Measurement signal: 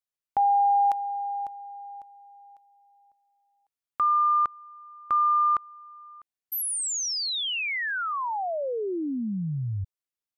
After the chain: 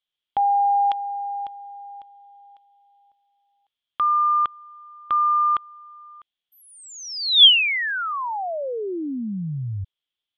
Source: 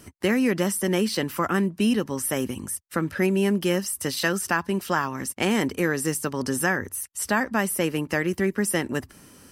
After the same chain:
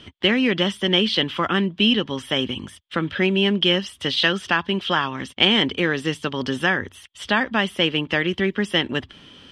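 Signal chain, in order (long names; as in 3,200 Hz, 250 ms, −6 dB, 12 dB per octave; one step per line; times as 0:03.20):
low-pass with resonance 3,300 Hz, resonance Q 10
level +1.5 dB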